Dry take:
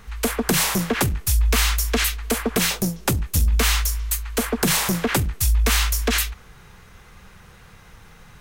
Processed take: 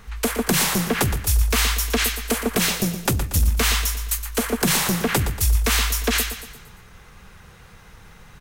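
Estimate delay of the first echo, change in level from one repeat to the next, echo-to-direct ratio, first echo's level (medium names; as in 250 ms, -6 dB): 117 ms, -6.5 dB, -9.5 dB, -10.5 dB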